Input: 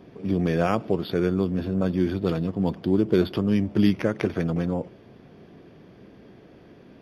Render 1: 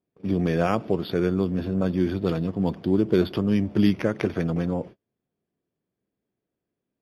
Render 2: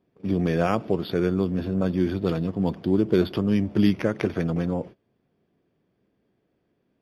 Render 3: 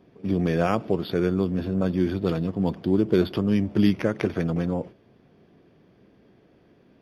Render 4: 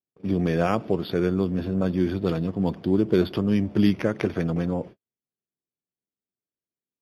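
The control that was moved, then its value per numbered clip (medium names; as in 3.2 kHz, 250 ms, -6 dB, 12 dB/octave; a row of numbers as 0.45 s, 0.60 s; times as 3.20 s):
gate, range: -35 dB, -22 dB, -8 dB, -52 dB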